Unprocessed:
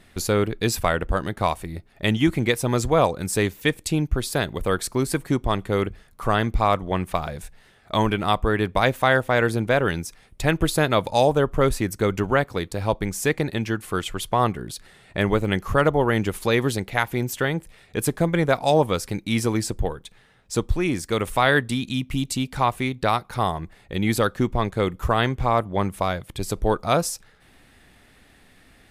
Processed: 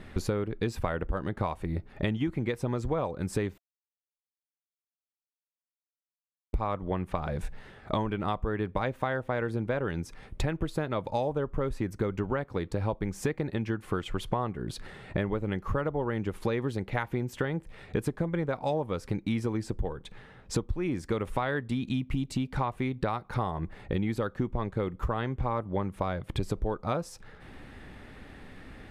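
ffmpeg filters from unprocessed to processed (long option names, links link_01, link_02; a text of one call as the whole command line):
ffmpeg -i in.wav -filter_complex "[0:a]asplit=3[link_01][link_02][link_03];[link_01]atrim=end=3.58,asetpts=PTS-STARTPTS,afade=type=out:start_time=3.576:duration=0.004:curve=hsin[link_04];[link_02]atrim=start=3.58:end=6.53,asetpts=PTS-STARTPTS,volume=0[link_05];[link_03]atrim=start=6.53,asetpts=PTS-STARTPTS,afade=type=in:duration=0.004:curve=hsin[link_06];[link_04][link_05][link_06]concat=n=3:v=0:a=1,lowpass=frequency=1300:poles=1,bandreject=frequency=690:width=12,acompressor=threshold=-35dB:ratio=10,volume=8.5dB" out.wav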